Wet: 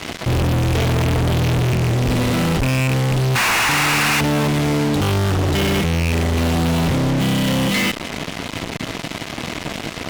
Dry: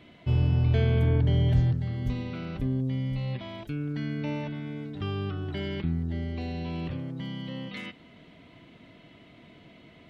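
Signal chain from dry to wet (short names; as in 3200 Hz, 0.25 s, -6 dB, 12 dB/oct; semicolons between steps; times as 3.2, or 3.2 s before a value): rattling part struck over -25 dBFS, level -28 dBFS; notch 1500 Hz; in parallel at 0 dB: compressor, threshold -37 dBFS, peak gain reduction 18 dB; on the sum: painted sound noise, 3.35–4.21, 720–2900 Hz -23 dBFS; fuzz box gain 49 dB, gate -44 dBFS; gain -3 dB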